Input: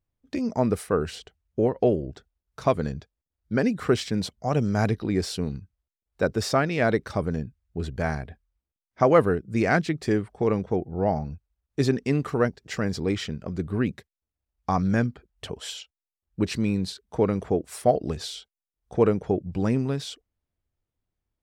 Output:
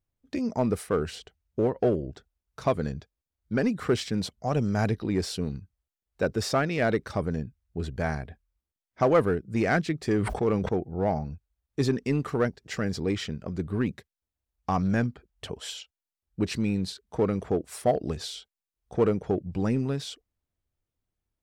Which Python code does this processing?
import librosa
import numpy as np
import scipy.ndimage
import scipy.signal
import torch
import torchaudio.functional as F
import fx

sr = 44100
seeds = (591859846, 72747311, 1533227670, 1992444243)

p1 = np.clip(x, -10.0 ** (-19.5 / 20.0), 10.0 ** (-19.5 / 20.0))
p2 = x + (p1 * 10.0 ** (-5.0 / 20.0))
p3 = fx.sustainer(p2, sr, db_per_s=47.0, at=(10.12, 10.69))
y = p3 * 10.0 ** (-5.5 / 20.0)